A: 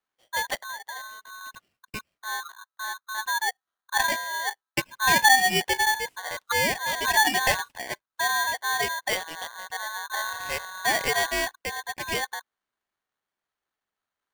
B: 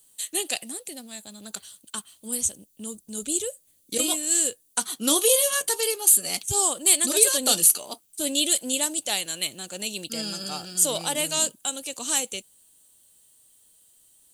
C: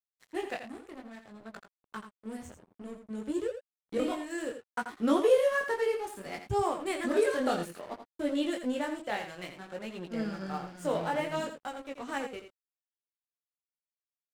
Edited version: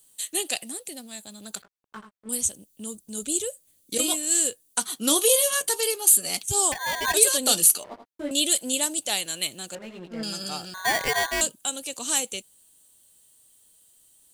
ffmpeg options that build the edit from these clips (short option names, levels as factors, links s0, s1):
-filter_complex "[2:a]asplit=3[s0][s1][s2];[0:a]asplit=2[s3][s4];[1:a]asplit=6[s5][s6][s7][s8][s9][s10];[s5]atrim=end=1.622[s11];[s0]atrim=start=1.618:end=2.292[s12];[s6]atrim=start=2.288:end=6.722[s13];[s3]atrim=start=6.718:end=7.142[s14];[s7]atrim=start=7.138:end=7.842[s15];[s1]atrim=start=7.838:end=8.312[s16];[s8]atrim=start=8.308:end=9.752[s17];[s2]atrim=start=9.748:end=10.232[s18];[s9]atrim=start=10.228:end=10.742[s19];[s4]atrim=start=10.738:end=11.412[s20];[s10]atrim=start=11.408[s21];[s11][s12]acrossfade=d=0.004:c1=hsin:c2=hsin[s22];[s22][s13]acrossfade=d=0.004:c1=hsin:c2=hsin[s23];[s23][s14]acrossfade=d=0.004:c1=hsin:c2=hsin[s24];[s24][s15]acrossfade=d=0.004:c1=hsin:c2=hsin[s25];[s25][s16]acrossfade=d=0.004:c1=hsin:c2=hsin[s26];[s26][s17]acrossfade=d=0.004:c1=hsin:c2=hsin[s27];[s27][s18]acrossfade=d=0.004:c1=hsin:c2=hsin[s28];[s28][s19]acrossfade=d=0.004:c1=hsin:c2=hsin[s29];[s29][s20]acrossfade=d=0.004:c1=hsin:c2=hsin[s30];[s30][s21]acrossfade=d=0.004:c1=hsin:c2=hsin"